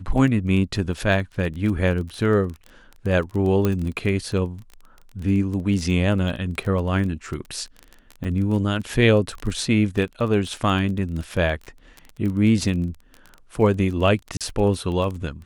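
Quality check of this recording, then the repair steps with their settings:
crackle 20 per s -28 dBFS
3.65 s: pop -9 dBFS
8.24–8.25 s: dropout 7.2 ms
14.37–14.41 s: dropout 37 ms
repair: de-click; interpolate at 8.24 s, 7.2 ms; interpolate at 14.37 s, 37 ms

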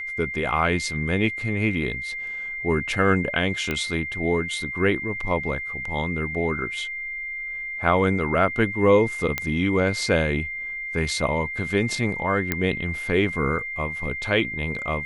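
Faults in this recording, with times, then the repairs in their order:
whine 2.1 kHz -29 dBFS
3.71 s: pop -12 dBFS
9.38 s: pop -9 dBFS
12.52 s: pop -8 dBFS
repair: de-click; band-stop 2.1 kHz, Q 30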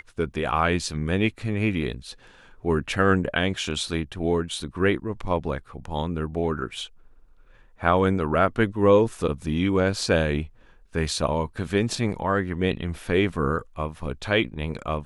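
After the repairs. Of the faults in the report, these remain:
nothing left

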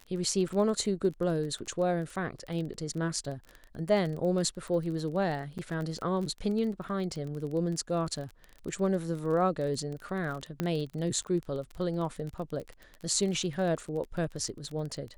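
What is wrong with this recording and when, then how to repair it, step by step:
crackle 25 per s -35 dBFS
5.58–5.59 s: dropout 7.9 ms
10.60 s: pop -17 dBFS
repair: de-click; interpolate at 5.58 s, 7.9 ms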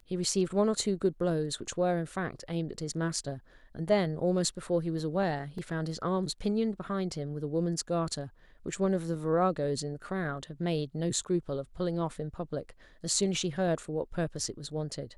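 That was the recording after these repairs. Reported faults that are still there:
nothing left

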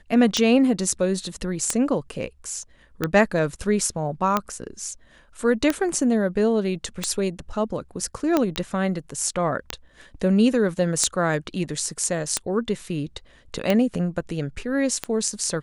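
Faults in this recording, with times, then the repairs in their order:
tick 45 rpm -7 dBFS
8.56 s: pop -11 dBFS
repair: de-click

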